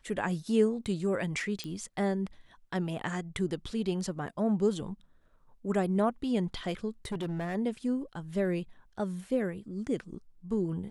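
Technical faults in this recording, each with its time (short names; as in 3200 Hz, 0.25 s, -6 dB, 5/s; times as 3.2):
1.64 pop -23 dBFS
7.05–7.56 clipped -30 dBFS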